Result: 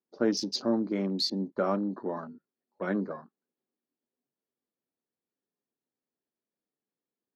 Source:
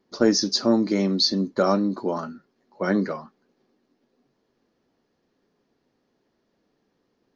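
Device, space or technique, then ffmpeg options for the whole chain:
over-cleaned archive recording: -af "highpass=110,lowpass=6000,afwtdn=0.0178,volume=-7.5dB"

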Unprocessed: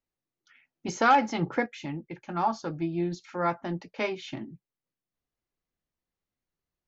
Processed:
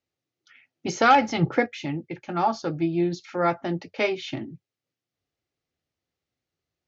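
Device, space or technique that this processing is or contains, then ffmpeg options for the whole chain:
car door speaker: -filter_complex "[0:a]asplit=3[link_01][link_02][link_03];[link_01]afade=type=out:start_time=1:duration=0.02[link_04];[link_02]asubboost=boost=6.5:cutoff=150,afade=type=in:start_time=1:duration=0.02,afade=type=out:start_time=1.45:duration=0.02[link_05];[link_03]afade=type=in:start_time=1.45:duration=0.02[link_06];[link_04][link_05][link_06]amix=inputs=3:normalize=0,highpass=90,equalizer=frequency=95:width_type=q:width=4:gain=7,equalizer=frequency=200:width_type=q:width=4:gain=-7,equalizer=frequency=1000:width_type=q:width=4:gain=-8,equalizer=frequency=1600:width_type=q:width=4:gain=-3,lowpass=frequency=6500:width=0.5412,lowpass=frequency=6500:width=1.3066,volume=6.5dB"

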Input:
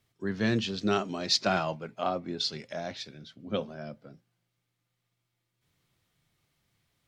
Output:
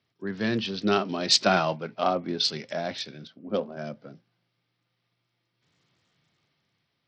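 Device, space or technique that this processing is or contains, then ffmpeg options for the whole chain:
Bluetooth headset: -filter_complex "[0:a]asettb=1/sr,asplit=3[link_01][link_02][link_03];[link_01]atrim=end=3.274[link_04];[link_02]atrim=start=3.27:end=3.77,asetpts=PTS-STARTPTS,afade=type=in:duration=0.004:curve=qsin,afade=type=out:start_time=0.496:duration=0.004:curve=qsin,equalizer=frequency=125:width_type=o:width=1:gain=-10,equalizer=frequency=2000:width_type=o:width=1:gain=-9,equalizer=frequency=4000:width_type=o:width=1:gain=-6,equalizer=frequency=8000:width_type=o:width=1:gain=-11[link_05];[link_03]atrim=start=3.766[link_06];[link_04][link_05]acrossfade=duration=0.004:curve1=hsin:curve2=qsin[link_07];[link_07][link_06]acrossfade=duration=0.004:curve1=qsin:curve2=hsin,highpass=130,dynaudnorm=framelen=150:gausssize=11:maxgain=5.5dB,aresample=16000,aresample=44100" -ar 44100 -c:a sbc -b:a 64k

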